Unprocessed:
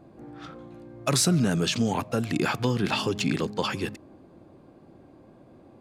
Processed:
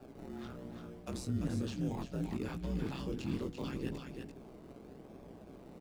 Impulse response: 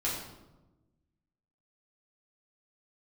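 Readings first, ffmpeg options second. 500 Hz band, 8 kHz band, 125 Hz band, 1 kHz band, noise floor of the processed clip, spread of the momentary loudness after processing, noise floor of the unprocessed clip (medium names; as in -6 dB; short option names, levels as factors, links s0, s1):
-13.0 dB, -23.5 dB, -10.5 dB, -17.5 dB, -54 dBFS, 16 LU, -54 dBFS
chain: -filter_complex "[0:a]bandreject=f=50:t=h:w=6,bandreject=f=100:t=h:w=6,bandreject=f=150:t=h:w=6,bandreject=f=200:t=h:w=6,bandreject=f=250:t=h:w=6,bandreject=f=300:t=h:w=6,bandreject=f=350:t=h:w=6,flanger=delay=17.5:depth=5:speed=0.75,areverse,acompressor=threshold=0.0158:ratio=5,areverse,aeval=exprs='val(0)*sin(2*PI*64*n/s)':c=same,asplit=2[s0][s1];[s1]acrusher=samples=21:mix=1:aa=0.000001:lfo=1:lforange=12.6:lforate=0.92,volume=0.422[s2];[s0][s2]amix=inputs=2:normalize=0,aecho=1:1:339:0.376,acrossover=split=390[s3][s4];[s4]acompressor=threshold=0.00141:ratio=2[s5];[s3][s5]amix=inputs=2:normalize=0,volume=1.41"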